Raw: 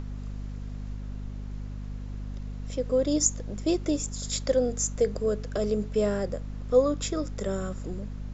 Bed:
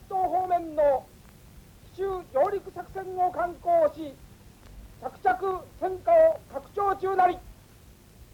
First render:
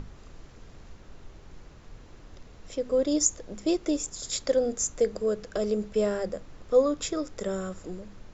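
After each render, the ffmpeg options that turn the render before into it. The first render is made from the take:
-af "bandreject=f=50:t=h:w=6,bandreject=f=100:t=h:w=6,bandreject=f=150:t=h:w=6,bandreject=f=200:t=h:w=6,bandreject=f=250:t=h:w=6"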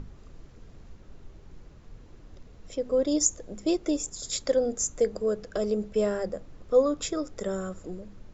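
-af "afftdn=nr=6:nf=-50"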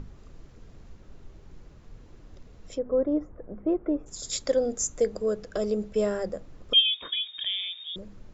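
-filter_complex "[0:a]asplit=3[a][b][c];[a]afade=t=out:st=2.77:d=0.02[d];[b]lowpass=f=1.6k:w=0.5412,lowpass=f=1.6k:w=1.3066,afade=t=in:st=2.77:d=0.02,afade=t=out:st=4.06:d=0.02[e];[c]afade=t=in:st=4.06:d=0.02[f];[d][e][f]amix=inputs=3:normalize=0,asettb=1/sr,asplit=3[g][h][i];[g]atrim=end=6.734[j];[h]atrim=start=6.73:end=7.96,asetpts=PTS-STARTPTS,afade=t=in:d=0.004:c=qsin,afade=t=out:st=1.226:d=0.004:c=qsin,lowpass=f=3.1k:t=q:w=0.5098,lowpass=f=3.1k:t=q:w=0.6013,lowpass=f=3.1k:t=q:w=0.9,lowpass=f=3.1k:t=q:w=2.563,afreqshift=-3700[k];[i]atrim=start=7.956[l];[j][k]acrossfade=d=0.004:c1=hsin:c2=qsin[m];[m][l]acrossfade=d=0.004:c1=qsin:c2=hsin"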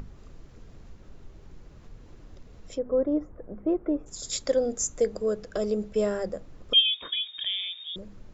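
-af "acompressor=mode=upward:threshold=-42dB:ratio=2.5"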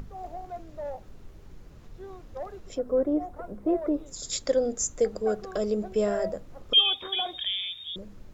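-filter_complex "[1:a]volume=-14dB[a];[0:a][a]amix=inputs=2:normalize=0"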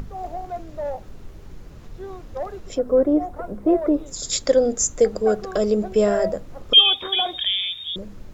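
-af "volume=7.5dB"

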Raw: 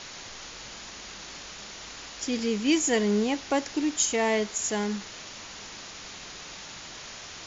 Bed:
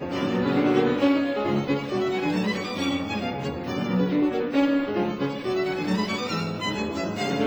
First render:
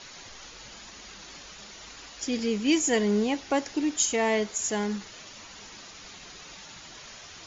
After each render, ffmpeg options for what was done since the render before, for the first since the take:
-af "afftdn=nr=7:nf=-43"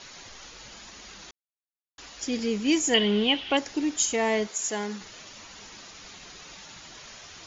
-filter_complex "[0:a]asettb=1/sr,asplit=3[a][b][c];[a]atrim=end=2.944[d];[b]atrim=start=2.94:end=3.57,asetpts=PTS-STARTPTS,afade=t=in:d=0.004:c=qsin,afade=t=out:st=0.626:d=0.004:c=qsin,lowpass=f=3.1k:t=q:w=8.8[e];[c]atrim=start=3.566[f];[d][e]acrossfade=d=0.004:c1=hsin:c2=qsin[g];[g][f]acrossfade=d=0.004:c1=qsin:c2=hsin,asettb=1/sr,asplit=3[h][i][j];[h]atrim=end=4.474[k];[i]atrim=start=4.47:end=5.01,asetpts=PTS-STARTPTS,afade=t=in:d=0.004:c=qsin,afade=t=out:st=0.536:d=0.004:c=qsin,highpass=f=310:p=1[l];[j]atrim=start=5.006[m];[k][l]acrossfade=d=0.004:c1=hsin:c2=qsin[n];[n][m]acrossfade=d=0.004:c1=qsin:c2=hsin,asplit=3[o][p][q];[o]atrim=end=1.31,asetpts=PTS-STARTPTS,afade=t=out:st=1.306:d=0.004:c=hsin[r];[p]atrim=start=1.31:end=1.98,asetpts=PTS-STARTPTS,volume=0[s];[q]atrim=start=1.98,asetpts=PTS-STARTPTS,afade=t=in:d=0.004:c=hsin[t];[r][s][t]concat=n=3:v=0:a=1"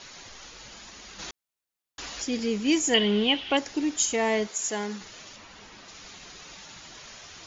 -filter_complex "[0:a]asplit=3[a][b][c];[a]afade=t=out:st=1.18:d=0.02[d];[b]acontrast=88,afade=t=in:st=1.18:d=0.02,afade=t=out:st=2.21:d=0.02[e];[c]afade=t=in:st=2.21:d=0.02[f];[d][e][f]amix=inputs=3:normalize=0,asettb=1/sr,asplit=3[g][h][i];[g]atrim=end=5.364[j];[h]atrim=start=5.36:end=5.88,asetpts=PTS-STARTPTS,afade=t=in:d=0.004:c=qsin,afade=t=out:st=0.516:d=0.004:c=qsin,aemphasis=mode=reproduction:type=50fm[k];[i]atrim=start=5.876[l];[j][k]acrossfade=d=0.004:c1=hsin:c2=qsin[m];[m][l]acrossfade=d=0.004:c1=qsin:c2=hsin"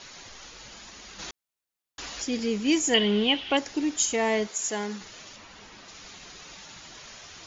-af anull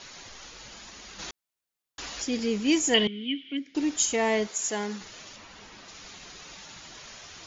-filter_complex "[0:a]asettb=1/sr,asplit=3[a][b][c];[a]atrim=end=3.074[d];[b]atrim=start=3.07:end=3.75,asetpts=PTS-STARTPTS,afade=t=in:d=0.004:c=qsin,afade=t=out:st=0.676:d=0.004:c=qsin,asplit=3[e][f][g];[e]bandpass=f=270:t=q:w=8,volume=0dB[h];[f]bandpass=f=2.29k:t=q:w=8,volume=-6dB[i];[g]bandpass=f=3.01k:t=q:w=8,volume=-9dB[j];[h][i][j]amix=inputs=3:normalize=0[k];[c]atrim=start=3.746[l];[d][k]acrossfade=d=0.004:c1=hsin:c2=qsin[m];[m][l]acrossfade=d=0.004:c1=qsin:c2=hsin"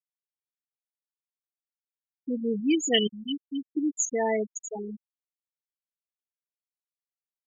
-af "afftfilt=real='re*gte(hypot(re,im),0.178)':imag='im*gte(hypot(re,im),0.178)':win_size=1024:overlap=0.75"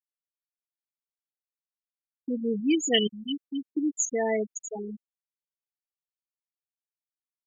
-af "agate=range=-33dB:threshold=-41dB:ratio=3:detection=peak,bandreject=f=940:w=6.6"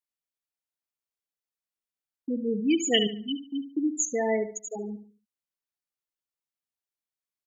-filter_complex "[0:a]asplit=2[a][b];[b]adelay=72,lowpass=f=3.5k:p=1,volume=-11dB,asplit=2[c][d];[d]adelay=72,lowpass=f=3.5k:p=1,volume=0.35,asplit=2[e][f];[f]adelay=72,lowpass=f=3.5k:p=1,volume=0.35,asplit=2[g][h];[h]adelay=72,lowpass=f=3.5k:p=1,volume=0.35[i];[a][c][e][g][i]amix=inputs=5:normalize=0"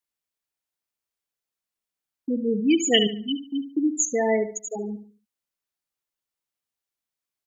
-af "volume=4dB"

